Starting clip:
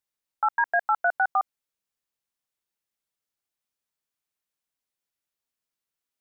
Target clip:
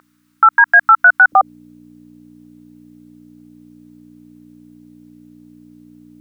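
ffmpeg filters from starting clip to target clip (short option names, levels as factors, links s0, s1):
-af "aeval=exprs='val(0)+0.00794*(sin(2*PI*60*n/s)+sin(2*PI*2*60*n/s)/2+sin(2*PI*3*60*n/s)/3+sin(2*PI*4*60*n/s)/4+sin(2*PI*5*60*n/s)/5)':c=same,asetnsamples=n=441:p=0,asendcmd='1.32 highpass f 520',highpass=f=1300:t=q:w=3.5,alimiter=level_in=10:limit=0.891:release=50:level=0:latency=1,volume=0.891"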